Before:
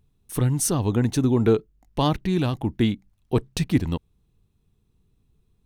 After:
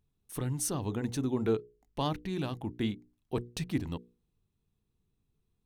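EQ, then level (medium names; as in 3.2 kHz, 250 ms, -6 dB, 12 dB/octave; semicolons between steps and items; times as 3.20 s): bass shelf 120 Hz -4.5 dB; hum notches 60/120/180/240/300/360/420/480 Hz; -9.0 dB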